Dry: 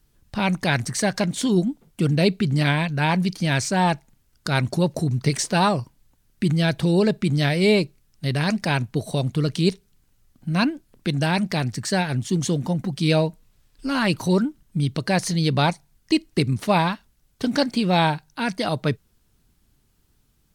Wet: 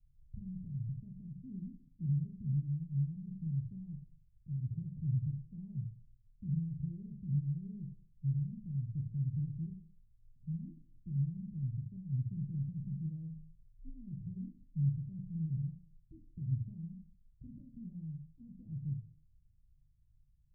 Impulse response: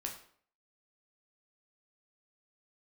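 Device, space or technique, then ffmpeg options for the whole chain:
club heard from the street: -filter_complex "[0:a]alimiter=limit=-15.5dB:level=0:latency=1:release=146,lowpass=frequency=130:width=0.5412,lowpass=frequency=130:width=1.3066[link_01];[1:a]atrim=start_sample=2205[link_02];[link_01][link_02]afir=irnorm=-1:irlink=0,volume=-3dB"

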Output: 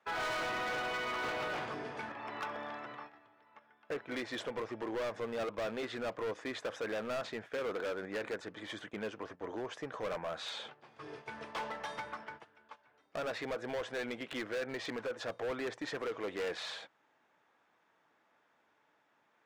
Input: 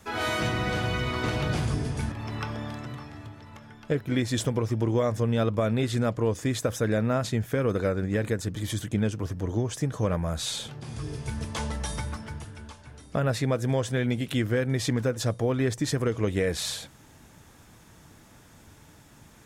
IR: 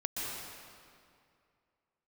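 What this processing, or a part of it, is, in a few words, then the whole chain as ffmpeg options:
walkie-talkie: -af "highpass=560,lowpass=2300,asoftclip=type=hard:threshold=-33.5dB,agate=range=-12dB:threshold=-48dB:ratio=16:detection=peak"

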